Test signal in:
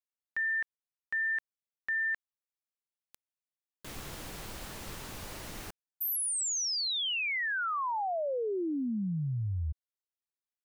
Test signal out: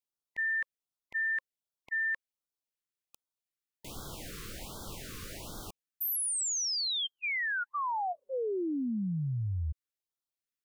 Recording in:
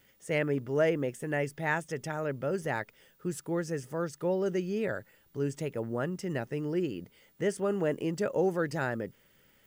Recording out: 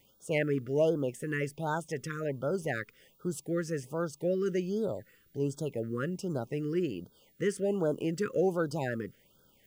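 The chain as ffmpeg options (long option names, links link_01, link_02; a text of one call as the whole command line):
ffmpeg -i in.wav -af "afftfilt=real='re*(1-between(b*sr/1024,710*pow(2300/710,0.5+0.5*sin(2*PI*1.3*pts/sr))/1.41,710*pow(2300/710,0.5+0.5*sin(2*PI*1.3*pts/sr))*1.41))':imag='im*(1-between(b*sr/1024,710*pow(2300/710,0.5+0.5*sin(2*PI*1.3*pts/sr))/1.41,710*pow(2300/710,0.5+0.5*sin(2*PI*1.3*pts/sr))*1.41))':win_size=1024:overlap=0.75" out.wav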